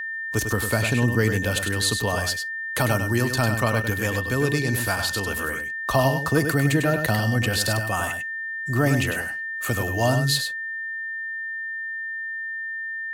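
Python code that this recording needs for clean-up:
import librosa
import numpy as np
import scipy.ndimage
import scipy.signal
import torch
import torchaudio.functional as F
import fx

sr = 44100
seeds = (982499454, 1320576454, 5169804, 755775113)

y = fx.notch(x, sr, hz=1800.0, q=30.0)
y = fx.fix_echo_inverse(y, sr, delay_ms=100, level_db=-7.0)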